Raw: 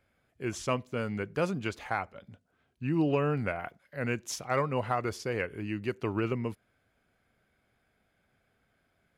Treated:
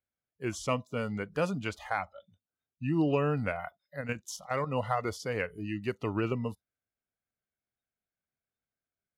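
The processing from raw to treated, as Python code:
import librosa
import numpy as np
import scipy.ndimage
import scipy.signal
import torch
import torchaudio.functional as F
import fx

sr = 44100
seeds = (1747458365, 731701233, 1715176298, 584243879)

y = fx.noise_reduce_blind(x, sr, reduce_db=24)
y = fx.level_steps(y, sr, step_db=10, at=(4.0, 4.66), fade=0.02)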